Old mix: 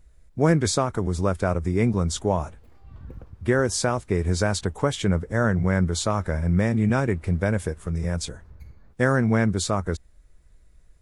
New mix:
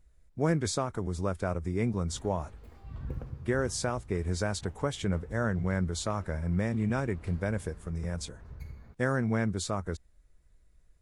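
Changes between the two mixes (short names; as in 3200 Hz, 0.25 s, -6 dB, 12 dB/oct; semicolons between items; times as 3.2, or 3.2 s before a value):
speech -8.0 dB; reverb: on, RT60 1.4 s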